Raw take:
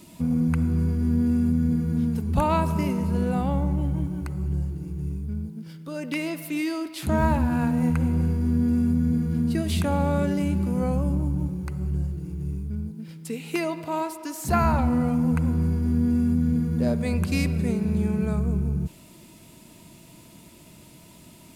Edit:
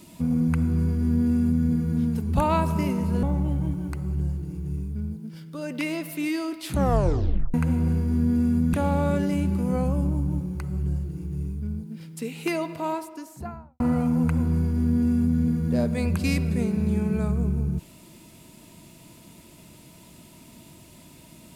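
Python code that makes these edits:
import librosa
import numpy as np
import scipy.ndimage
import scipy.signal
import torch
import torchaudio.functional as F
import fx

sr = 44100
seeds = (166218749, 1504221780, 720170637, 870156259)

y = fx.studio_fade_out(x, sr, start_s=13.83, length_s=1.05)
y = fx.edit(y, sr, fx.cut(start_s=3.23, length_s=0.33),
    fx.tape_stop(start_s=7.04, length_s=0.83),
    fx.cut(start_s=9.06, length_s=0.75), tone=tone)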